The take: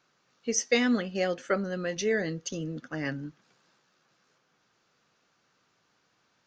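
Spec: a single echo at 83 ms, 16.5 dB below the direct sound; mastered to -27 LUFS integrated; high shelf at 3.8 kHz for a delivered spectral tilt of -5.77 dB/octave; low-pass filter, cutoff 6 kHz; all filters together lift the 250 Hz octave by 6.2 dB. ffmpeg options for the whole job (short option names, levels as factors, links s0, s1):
-af "lowpass=6000,equalizer=f=250:t=o:g=7,highshelf=f=3800:g=-8,aecho=1:1:83:0.15"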